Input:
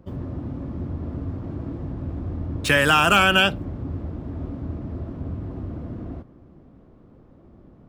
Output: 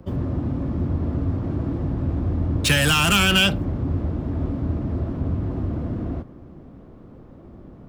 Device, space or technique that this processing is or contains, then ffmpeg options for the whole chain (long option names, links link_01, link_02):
one-band saturation: -filter_complex "[0:a]acrossover=split=220|2900[link_01][link_02][link_03];[link_02]asoftclip=type=tanh:threshold=-29.5dB[link_04];[link_01][link_04][link_03]amix=inputs=3:normalize=0,volume=6.5dB"